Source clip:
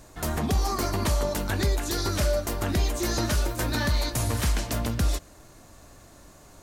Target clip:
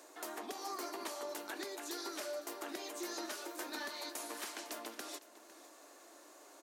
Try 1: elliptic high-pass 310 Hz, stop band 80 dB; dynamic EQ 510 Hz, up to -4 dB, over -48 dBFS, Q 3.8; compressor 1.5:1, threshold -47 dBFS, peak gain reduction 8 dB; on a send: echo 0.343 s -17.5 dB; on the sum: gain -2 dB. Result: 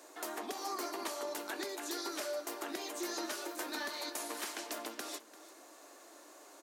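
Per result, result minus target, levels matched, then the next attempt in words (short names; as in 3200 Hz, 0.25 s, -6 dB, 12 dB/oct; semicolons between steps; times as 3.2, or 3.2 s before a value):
echo 0.162 s early; compressor: peak gain reduction -3 dB
elliptic high-pass 310 Hz, stop band 80 dB; dynamic EQ 510 Hz, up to -4 dB, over -48 dBFS, Q 3.8; compressor 1.5:1, threshold -47 dBFS, peak gain reduction 8 dB; on a send: echo 0.505 s -17.5 dB; on the sum: gain -2 dB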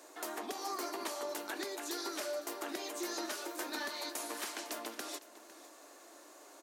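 compressor: peak gain reduction -3 dB
elliptic high-pass 310 Hz, stop band 80 dB; dynamic EQ 510 Hz, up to -4 dB, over -48 dBFS, Q 3.8; compressor 1.5:1, threshold -56.5 dBFS, peak gain reduction 11 dB; on a send: echo 0.505 s -17.5 dB; on the sum: gain -2 dB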